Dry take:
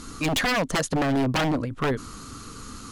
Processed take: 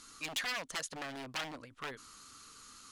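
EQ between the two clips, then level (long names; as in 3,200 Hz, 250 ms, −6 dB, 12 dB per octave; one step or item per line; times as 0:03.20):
first-order pre-emphasis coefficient 0.97
high-shelf EQ 4,100 Hz −11 dB
high-shelf EQ 9,700 Hz −9 dB
+2.0 dB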